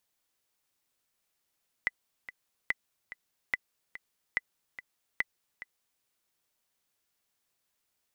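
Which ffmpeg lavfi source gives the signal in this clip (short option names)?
-f lavfi -i "aevalsrc='pow(10,(-14-15*gte(mod(t,2*60/144),60/144))/20)*sin(2*PI*2000*mod(t,60/144))*exp(-6.91*mod(t,60/144)/0.03)':d=4.16:s=44100"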